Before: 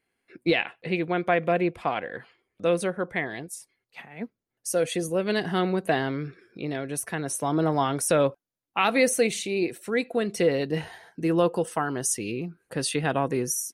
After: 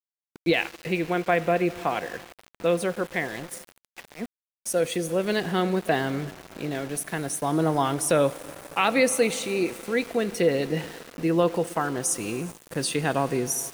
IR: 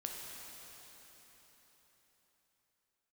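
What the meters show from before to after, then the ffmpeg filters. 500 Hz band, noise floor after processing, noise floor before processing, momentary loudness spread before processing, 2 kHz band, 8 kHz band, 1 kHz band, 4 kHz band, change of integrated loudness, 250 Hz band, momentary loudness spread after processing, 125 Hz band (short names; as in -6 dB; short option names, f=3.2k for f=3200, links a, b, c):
+0.5 dB, under -85 dBFS, -83 dBFS, 14 LU, +0.5 dB, +0.5 dB, +0.5 dB, +1.0 dB, +0.5 dB, +0.5 dB, 14 LU, +0.5 dB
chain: -filter_complex "[0:a]asplit=2[a][b];[1:a]atrim=start_sample=2205,asetrate=34839,aresample=44100[c];[b][c]afir=irnorm=-1:irlink=0,volume=-12dB[d];[a][d]amix=inputs=2:normalize=0,aeval=exprs='val(0)*gte(abs(val(0)),0.0158)':c=same,volume=-1dB"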